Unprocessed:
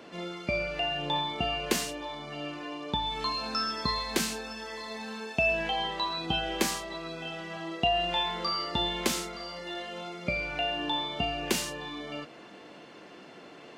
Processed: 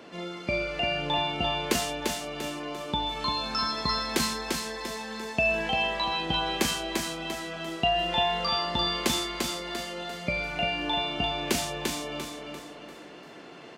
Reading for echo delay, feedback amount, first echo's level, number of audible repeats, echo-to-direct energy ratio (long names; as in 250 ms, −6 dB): 345 ms, 40%, −4.0 dB, 4, −3.0 dB